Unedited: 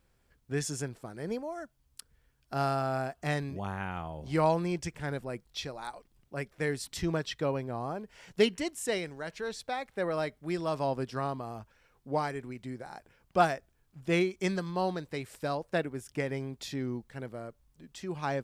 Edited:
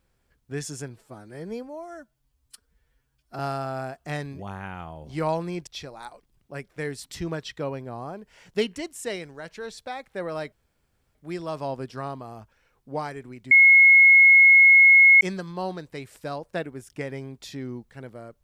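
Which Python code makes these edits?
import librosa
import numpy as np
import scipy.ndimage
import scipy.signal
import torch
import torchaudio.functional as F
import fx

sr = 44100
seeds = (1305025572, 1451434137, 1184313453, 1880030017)

y = fx.edit(x, sr, fx.stretch_span(start_s=0.9, length_s=1.66, factor=1.5),
    fx.cut(start_s=4.84, length_s=0.65),
    fx.insert_room_tone(at_s=10.34, length_s=0.63),
    fx.bleep(start_s=12.7, length_s=1.7, hz=2170.0, db=-10.0), tone=tone)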